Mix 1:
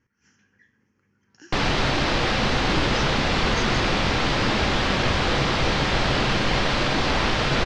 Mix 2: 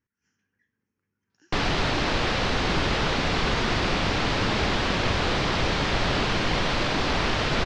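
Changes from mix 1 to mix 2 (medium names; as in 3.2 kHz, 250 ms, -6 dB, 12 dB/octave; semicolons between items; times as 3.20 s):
speech -12.0 dB; reverb: off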